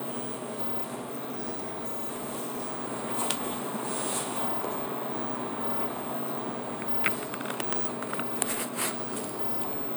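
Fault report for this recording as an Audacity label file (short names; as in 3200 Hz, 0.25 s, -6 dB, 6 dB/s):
0.990000	2.810000	clipped -30 dBFS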